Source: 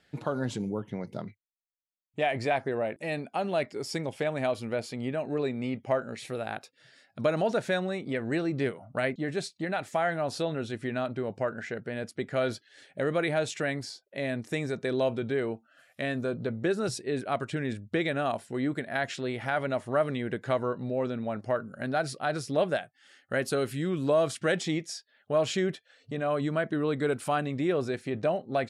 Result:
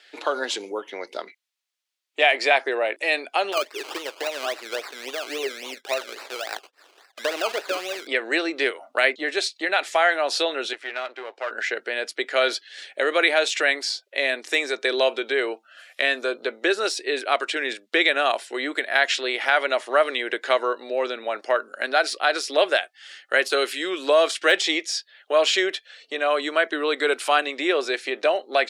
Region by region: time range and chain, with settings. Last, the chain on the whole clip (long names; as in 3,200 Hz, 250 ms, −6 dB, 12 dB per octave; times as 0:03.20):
0:03.52–0:08.07: low-pass filter 7,200 Hz + flanger 1.4 Hz, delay 1.1 ms, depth 2.2 ms, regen +67% + sample-and-hold swept by an LFO 19×, swing 60% 3.6 Hz
0:10.73–0:11.51: gain on one half-wave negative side −7 dB + high-pass filter 810 Hz 6 dB per octave + high-shelf EQ 3,800 Hz −10 dB
whole clip: de-essing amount 85%; Butterworth high-pass 330 Hz 36 dB per octave; parametric band 3,400 Hz +13 dB 2.8 octaves; level +4 dB